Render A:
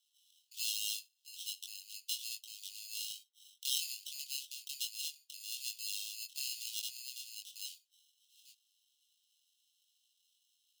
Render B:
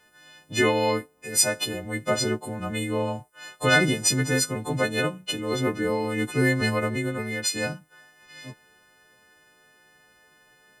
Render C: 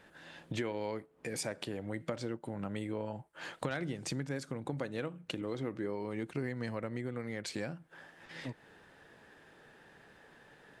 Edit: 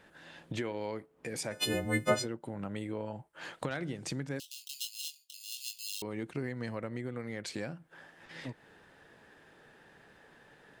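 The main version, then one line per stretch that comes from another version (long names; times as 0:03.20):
C
0:01.61–0:02.16: punch in from B, crossfade 0.24 s
0:04.40–0:06.02: punch in from A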